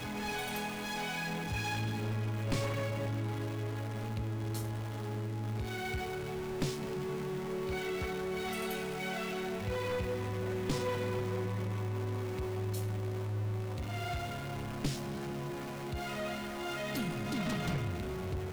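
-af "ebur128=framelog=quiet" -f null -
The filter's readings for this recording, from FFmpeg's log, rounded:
Integrated loudness:
  I:         -36.5 LUFS
  Threshold: -46.5 LUFS
Loudness range:
  LRA:         2.2 LU
  Threshold: -56.6 LUFS
  LRA low:   -37.8 LUFS
  LRA high:  -35.6 LUFS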